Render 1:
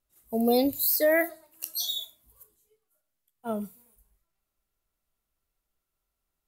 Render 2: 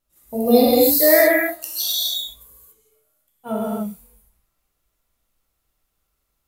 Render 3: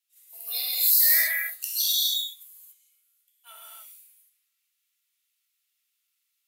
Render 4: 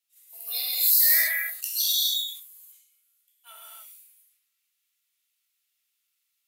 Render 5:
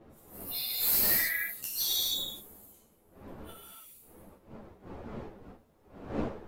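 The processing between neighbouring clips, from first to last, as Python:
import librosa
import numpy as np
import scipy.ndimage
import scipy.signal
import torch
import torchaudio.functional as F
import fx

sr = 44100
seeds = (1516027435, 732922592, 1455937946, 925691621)

y1 = fx.rev_gated(x, sr, seeds[0], gate_ms=310, shape='flat', drr_db=-6.5)
y1 = y1 * 10.0 ** (2.5 / 20.0)
y2 = fx.dynamic_eq(y1, sr, hz=2800.0, q=0.97, threshold_db=-36.0, ratio=4.0, max_db=-4)
y2 = fx.ladder_highpass(y2, sr, hz=1900.0, resonance_pct=25)
y2 = y2 * 10.0 ** (5.0 / 20.0)
y3 = fx.sustainer(y2, sr, db_per_s=87.0)
y4 = fx.diode_clip(y3, sr, knee_db=-17.5)
y4 = fx.dmg_wind(y4, sr, seeds[1], corner_hz=500.0, level_db=-41.0)
y4 = fx.ensemble(y4, sr)
y4 = y4 * 10.0 ** (-1.5 / 20.0)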